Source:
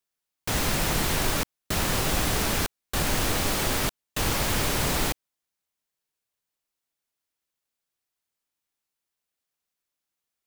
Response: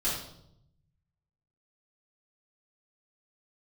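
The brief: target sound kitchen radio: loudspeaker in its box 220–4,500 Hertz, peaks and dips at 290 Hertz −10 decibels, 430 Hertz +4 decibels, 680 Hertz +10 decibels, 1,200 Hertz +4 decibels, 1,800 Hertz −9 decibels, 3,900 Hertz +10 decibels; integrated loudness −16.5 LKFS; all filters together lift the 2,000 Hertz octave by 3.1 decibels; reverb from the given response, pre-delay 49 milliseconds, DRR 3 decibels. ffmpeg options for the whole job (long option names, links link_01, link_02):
-filter_complex "[0:a]equalizer=frequency=2000:width_type=o:gain=7.5,asplit=2[link_01][link_02];[1:a]atrim=start_sample=2205,adelay=49[link_03];[link_02][link_03]afir=irnorm=-1:irlink=0,volume=-10.5dB[link_04];[link_01][link_04]amix=inputs=2:normalize=0,highpass=220,equalizer=frequency=290:width_type=q:width=4:gain=-10,equalizer=frequency=430:width_type=q:width=4:gain=4,equalizer=frequency=680:width_type=q:width=4:gain=10,equalizer=frequency=1200:width_type=q:width=4:gain=4,equalizer=frequency=1800:width_type=q:width=4:gain=-9,equalizer=frequency=3900:width_type=q:width=4:gain=10,lowpass=frequency=4500:width=0.5412,lowpass=frequency=4500:width=1.3066,volume=6dB"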